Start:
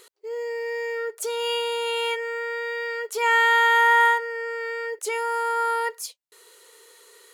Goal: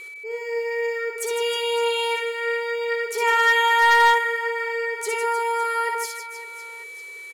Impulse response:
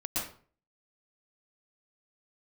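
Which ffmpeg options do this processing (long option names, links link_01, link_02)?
-af "aecho=1:1:60|156|309.6|555.4|948.6:0.631|0.398|0.251|0.158|0.1,aeval=exprs='val(0)+0.0158*sin(2*PI*2300*n/s)':channel_layout=same,asoftclip=type=hard:threshold=-11dB"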